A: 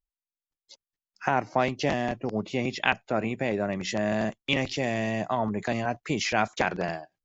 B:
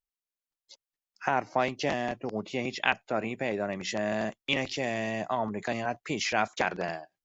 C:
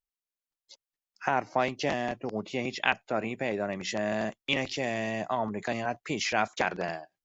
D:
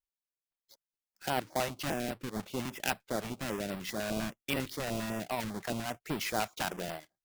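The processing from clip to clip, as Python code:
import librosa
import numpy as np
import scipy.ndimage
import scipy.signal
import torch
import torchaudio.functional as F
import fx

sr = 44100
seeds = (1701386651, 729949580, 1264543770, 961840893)

y1 = fx.low_shelf(x, sr, hz=210.0, db=-7.5)
y1 = y1 * 10.0 ** (-1.5 / 20.0)
y2 = y1
y3 = fx.halfwave_hold(y2, sr)
y3 = fx.filter_held_notch(y3, sr, hz=10.0, low_hz=290.0, high_hz=6500.0)
y3 = y3 * 10.0 ** (-8.0 / 20.0)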